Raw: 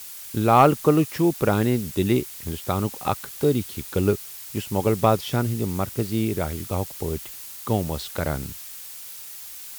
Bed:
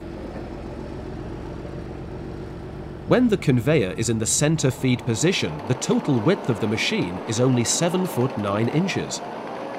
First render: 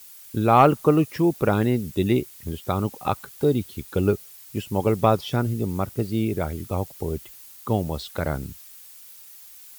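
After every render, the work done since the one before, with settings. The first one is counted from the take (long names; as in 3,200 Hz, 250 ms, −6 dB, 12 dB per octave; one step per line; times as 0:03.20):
broadband denoise 9 dB, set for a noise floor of −39 dBFS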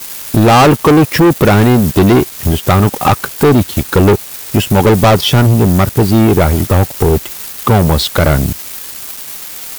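leveller curve on the samples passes 5
in parallel at +1 dB: downward compressor, threshold −20 dBFS, peak gain reduction 11.5 dB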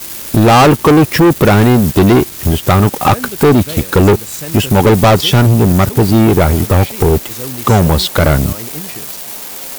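mix in bed −7.5 dB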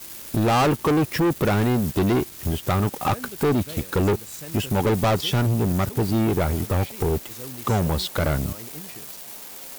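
level −12.5 dB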